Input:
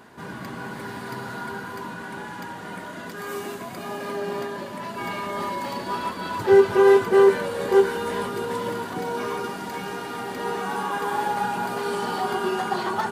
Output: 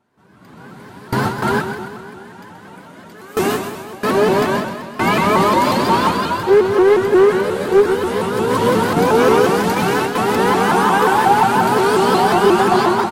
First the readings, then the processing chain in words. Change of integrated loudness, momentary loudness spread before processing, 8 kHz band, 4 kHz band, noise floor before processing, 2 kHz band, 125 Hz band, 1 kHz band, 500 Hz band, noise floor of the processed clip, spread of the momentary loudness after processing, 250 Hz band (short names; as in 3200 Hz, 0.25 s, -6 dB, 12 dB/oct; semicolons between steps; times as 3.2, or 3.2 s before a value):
+9.5 dB, 18 LU, +11.0 dB, +11.0 dB, -36 dBFS, +9.5 dB, +14.0 dB, +11.5 dB, +7.0 dB, -40 dBFS, 8 LU, +11.5 dB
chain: notch 1800 Hz, Q 19; gate with hold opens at -22 dBFS; low shelf 390 Hz +3.5 dB; AGC gain up to 15 dB; in parallel at -3.5 dB: soft clip -15.5 dBFS, distortion -9 dB; on the sum: flange 0.7 Hz, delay 7.2 ms, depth 6 ms, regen -56%; hard clip -7 dBFS, distortion -28 dB; on a send: feedback echo 0.129 s, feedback 57%, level -8 dB; on the sum: shaped vibrato saw up 5.6 Hz, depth 160 cents; gain +1 dB